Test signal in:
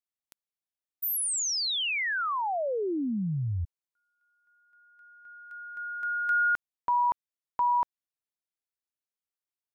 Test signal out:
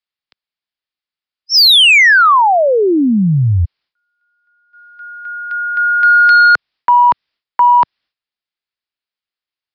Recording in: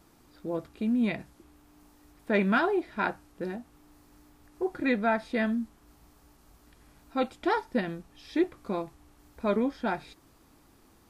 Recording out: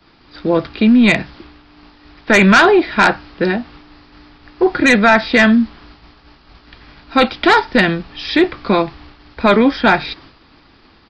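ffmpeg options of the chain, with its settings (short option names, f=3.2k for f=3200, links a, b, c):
-filter_complex "[0:a]aresample=11025,aresample=44100,acrossover=split=130|450|1300[a][b][c][d];[d]aeval=exprs='0.106*sin(PI/2*1.58*val(0)/0.106)':c=same[e];[a][b][c][e]amix=inputs=4:normalize=0,apsyclip=23dB,agate=range=-15dB:threshold=-28dB:ratio=3:release=318:detection=peak,volume=-5dB"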